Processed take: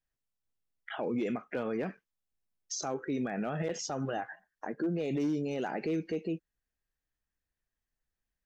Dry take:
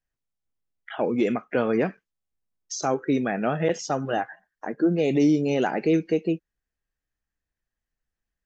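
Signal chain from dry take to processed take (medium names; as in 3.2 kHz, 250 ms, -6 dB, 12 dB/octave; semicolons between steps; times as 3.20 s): hard clipper -14 dBFS, distortion -29 dB; peak limiter -22.5 dBFS, peak gain reduction 8.5 dB; trim -3 dB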